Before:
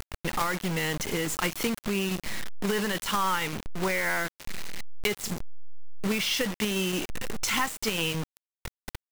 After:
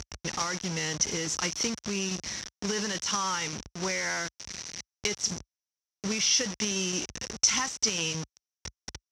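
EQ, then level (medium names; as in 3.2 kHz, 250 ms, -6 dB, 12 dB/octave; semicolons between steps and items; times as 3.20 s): high-pass 52 Hz 24 dB/octave; resonant low-pass 5.8 kHz, resonance Q 9.6; bass shelf 150 Hz +3 dB; -5.0 dB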